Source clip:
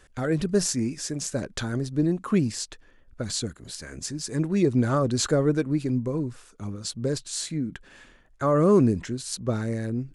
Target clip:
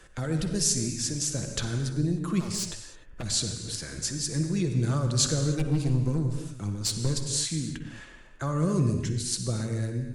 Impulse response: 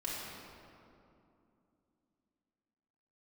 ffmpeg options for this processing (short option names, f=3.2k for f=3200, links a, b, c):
-filter_complex "[0:a]asplit=3[a][b][c];[a]afade=t=out:st=2.39:d=0.02[d];[b]aeval=exprs='0.0398*(abs(mod(val(0)/0.0398+3,4)-2)-1)':c=same,afade=t=in:st=2.39:d=0.02,afade=t=out:st=3.22:d=0.02[e];[c]afade=t=in:st=3.22:d=0.02[f];[d][e][f]amix=inputs=3:normalize=0,asplit=3[g][h][i];[g]afade=t=out:st=5.58:d=0.02[j];[h]aeval=exprs='0.2*(cos(1*acos(clip(val(0)/0.2,-1,1)))-cos(1*PI/2))+0.0501*(cos(4*acos(clip(val(0)/0.2,-1,1)))-cos(4*PI/2))+0.0282*(cos(5*acos(clip(val(0)/0.2,-1,1)))-cos(5*PI/2))+0.00631*(cos(6*acos(clip(val(0)/0.2,-1,1)))-cos(6*PI/2))+0.0178*(cos(7*acos(clip(val(0)/0.2,-1,1)))-cos(7*PI/2))':c=same,afade=t=in:st=5.58:d=0.02,afade=t=out:st=7.11:d=0.02[k];[i]afade=t=in:st=7.11:d=0.02[l];[j][k][l]amix=inputs=3:normalize=0,acrossover=split=140|3000[m][n][o];[n]acompressor=threshold=-46dB:ratio=2[p];[m][p][o]amix=inputs=3:normalize=0,asplit=2[q][r];[1:a]atrim=start_sample=2205,afade=t=out:st=0.21:d=0.01,atrim=end_sample=9702,asetrate=22932,aresample=44100[s];[r][s]afir=irnorm=-1:irlink=0,volume=-6.5dB[t];[q][t]amix=inputs=2:normalize=0" -ar 48000 -c:a libopus -b:a 64k